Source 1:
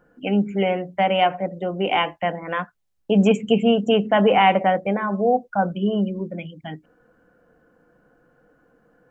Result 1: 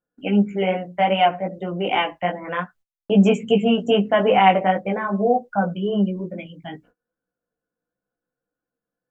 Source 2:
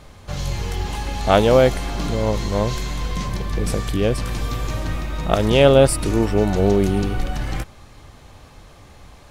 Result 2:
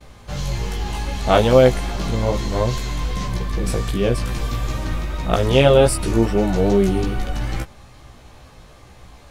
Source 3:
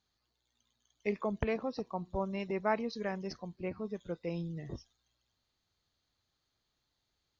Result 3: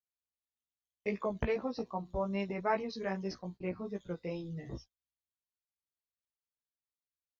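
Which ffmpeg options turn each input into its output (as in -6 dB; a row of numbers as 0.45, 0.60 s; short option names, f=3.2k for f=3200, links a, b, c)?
-af "agate=range=-28dB:threshold=-49dB:ratio=16:detection=peak,flanger=delay=15:depth=2.3:speed=2.5,volume=3dB"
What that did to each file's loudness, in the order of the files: +0.5, +0.5, 0.0 LU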